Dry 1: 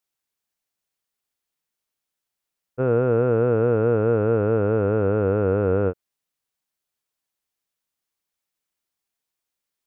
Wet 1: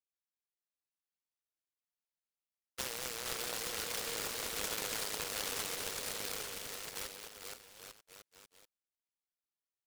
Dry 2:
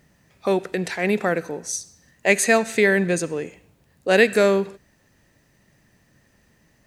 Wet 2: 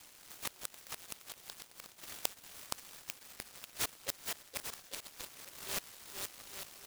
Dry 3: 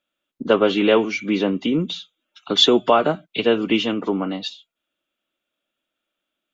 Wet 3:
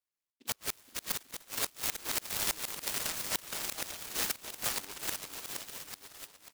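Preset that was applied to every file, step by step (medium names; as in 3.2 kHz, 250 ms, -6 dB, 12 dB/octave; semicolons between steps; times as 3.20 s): chunks repeated in reverse 643 ms, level -7 dB; gate with hold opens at -51 dBFS; low-pass 3.2 kHz 24 dB/octave; peak limiter -13 dBFS; compression 10:1, threshold -23 dBFS; resonant high-pass 2.2 kHz, resonance Q 2.9; inverted gate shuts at -25 dBFS, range -34 dB; on a send: bouncing-ball echo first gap 470 ms, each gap 0.8×, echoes 5; on the sum: delay time shaken by noise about 3.2 kHz, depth 0.23 ms; trim +5.5 dB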